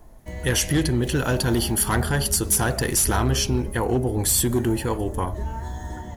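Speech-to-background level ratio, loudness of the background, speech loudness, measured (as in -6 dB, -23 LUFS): 10.5 dB, -33.0 LUFS, -22.5 LUFS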